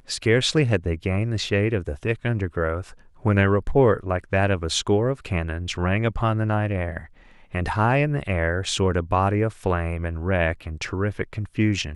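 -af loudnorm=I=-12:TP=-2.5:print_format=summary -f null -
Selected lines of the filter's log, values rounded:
Input Integrated:    -23.7 LUFS
Input True Peak:      -6.0 dBTP
Input LRA:             2.2 LU
Input Threshold:     -33.8 LUFS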